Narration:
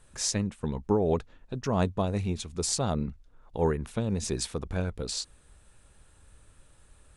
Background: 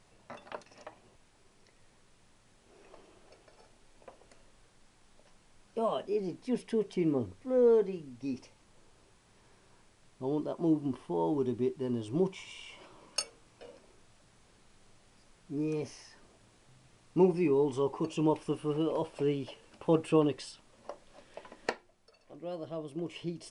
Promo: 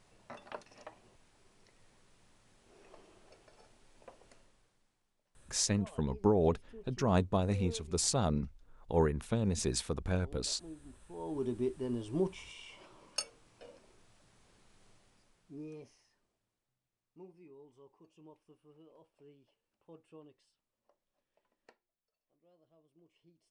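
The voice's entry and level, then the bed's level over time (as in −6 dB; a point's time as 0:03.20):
5.35 s, −2.5 dB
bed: 0:04.33 −2 dB
0:05.17 −21 dB
0:10.98 −21 dB
0:11.46 −3 dB
0:14.92 −3 dB
0:16.83 −29 dB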